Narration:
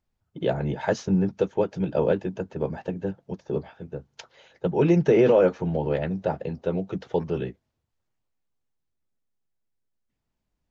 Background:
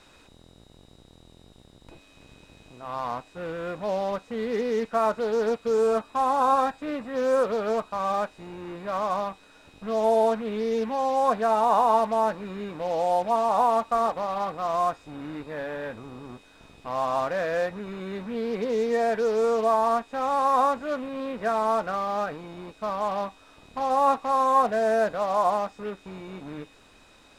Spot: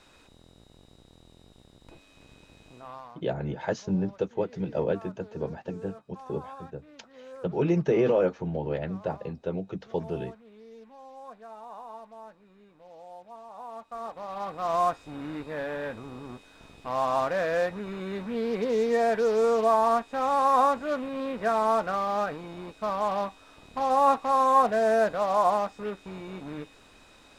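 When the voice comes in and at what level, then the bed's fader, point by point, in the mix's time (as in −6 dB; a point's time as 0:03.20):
2.80 s, −5.0 dB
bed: 0:02.78 −2.5 dB
0:03.22 −22.5 dB
0:13.53 −22.5 dB
0:14.73 0 dB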